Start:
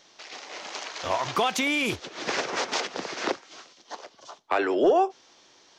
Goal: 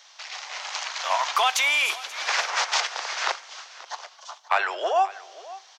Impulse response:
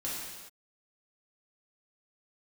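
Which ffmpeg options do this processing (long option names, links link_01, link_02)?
-filter_complex "[0:a]highpass=frequency=760:width=0.5412,highpass=frequency=760:width=1.3066,aecho=1:1:532:0.119,asplit=2[link_01][link_02];[1:a]atrim=start_sample=2205,asetrate=35280,aresample=44100,highshelf=frequency=5600:gain=10.5[link_03];[link_02][link_03]afir=irnorm=-1:irlink=0,volume=-26.5dB[link_04];[link_01][link_04]amix=inputs=2:normalize=0,volume=5dB"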